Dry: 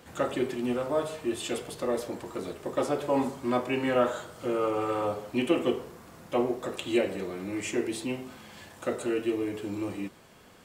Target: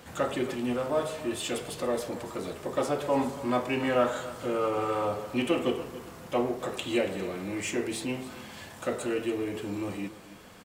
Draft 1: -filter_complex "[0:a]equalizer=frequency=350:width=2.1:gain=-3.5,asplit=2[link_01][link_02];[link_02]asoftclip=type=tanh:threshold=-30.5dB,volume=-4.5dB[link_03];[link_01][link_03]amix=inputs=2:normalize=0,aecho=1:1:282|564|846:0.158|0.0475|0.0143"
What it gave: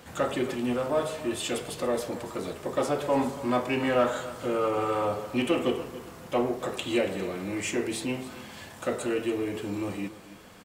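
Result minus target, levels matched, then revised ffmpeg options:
soft clipping: distortion −5 dB
-filter_complex "[0:a]equalizer=frequency=350:width=2.1:gain=-3.5,asplit=2[link_01][link_02];[link_02]asoftclip=type=tanh:threshold=-41dB,volume=-4.5dB[link_03];[link_01][link_03]amix=inputs=2:normalize=0,aecho=1:1:282|564|846:0.158|0.0475|0.0143"

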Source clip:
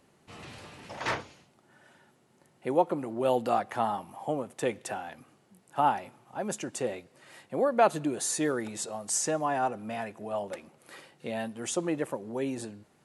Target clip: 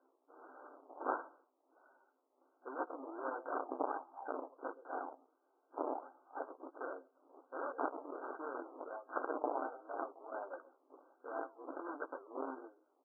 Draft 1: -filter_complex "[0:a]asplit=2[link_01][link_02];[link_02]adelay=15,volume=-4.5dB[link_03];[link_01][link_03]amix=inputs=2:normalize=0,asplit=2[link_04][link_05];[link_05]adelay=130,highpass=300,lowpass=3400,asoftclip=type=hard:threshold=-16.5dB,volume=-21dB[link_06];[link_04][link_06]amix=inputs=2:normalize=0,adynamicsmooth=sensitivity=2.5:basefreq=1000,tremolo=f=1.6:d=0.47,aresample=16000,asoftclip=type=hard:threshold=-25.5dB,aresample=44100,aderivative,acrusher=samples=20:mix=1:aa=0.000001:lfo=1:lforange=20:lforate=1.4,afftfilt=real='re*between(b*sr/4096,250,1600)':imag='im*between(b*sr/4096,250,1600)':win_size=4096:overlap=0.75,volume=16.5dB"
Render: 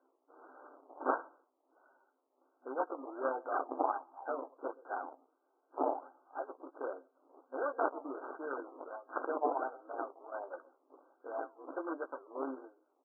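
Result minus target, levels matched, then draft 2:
hard clipping: distortion −8 dB
-filter_complex "[0:a]asplit=2[link_01][link_02];[link_02]adelay=15,volume=-4.5dB[link_03];[link_01][link_03]amix=inputs=2:normalize=0,asplit=2[link_04][link_05];[link_05]adelay=130,highpass=300,lowpass=3400,asoftclip=type=hard:threshold=-16.5dB,volume=-21dB[link_06];[link_04][link_06]amix=inputs=2:normalize=0,adynamicsmooth=sensitivity=2.5:basefreq=1000,tremolo=f=1.6:d=0.47,aresample=16000,asoftclip=type=hard:threshold=-36dB,aresample=44100,aderivative,acrusher=samples=20:mix=1:aa=0.000001:lfo=1:lforange=20:lforate=1.4,afftfilt=real='re*between(b*sr/4096,250,1600)':imag='im*between(b*sr/4096,250,1600)':win_size=4096:overlap=0.75,volume=16.5dB"

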